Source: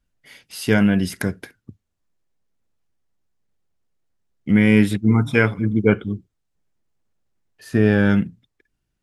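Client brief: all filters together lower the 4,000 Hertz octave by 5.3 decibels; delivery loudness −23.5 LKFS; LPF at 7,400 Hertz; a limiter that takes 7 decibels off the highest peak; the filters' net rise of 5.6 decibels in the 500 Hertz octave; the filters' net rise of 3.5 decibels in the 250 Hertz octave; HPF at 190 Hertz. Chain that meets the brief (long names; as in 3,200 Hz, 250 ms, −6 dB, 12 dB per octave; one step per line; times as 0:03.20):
high-pass filter 190 Hz
low-pass filter 7,400 Hz
parametric band 250 Hz +6 dB
parametric band 500 Hz +5 dB
parametric band 4,000 Hz −7.5 dB
level −5.5 dB
brickwall limiter −11 dBFS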